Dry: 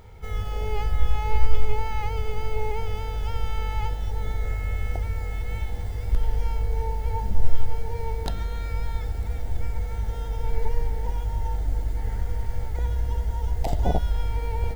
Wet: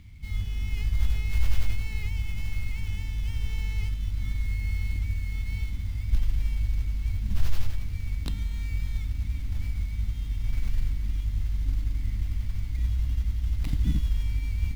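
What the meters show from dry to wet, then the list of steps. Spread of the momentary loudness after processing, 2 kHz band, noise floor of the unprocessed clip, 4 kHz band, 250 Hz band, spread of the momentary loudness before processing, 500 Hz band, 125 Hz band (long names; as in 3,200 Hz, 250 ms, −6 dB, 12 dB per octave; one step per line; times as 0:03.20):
5 LU, −2.0 dB, −30 dBFS, can't be measured, −1.0 dB, 4 LU, −22.5 dB, −0.5 dB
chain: Chebyshev band-stop filter 290–2,100 Hz, order 4
reversed playback
upward compression, threshold −39 dBFS
reversed playback
noise that follows the level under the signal 31 dB
windowed peak hold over 5 samples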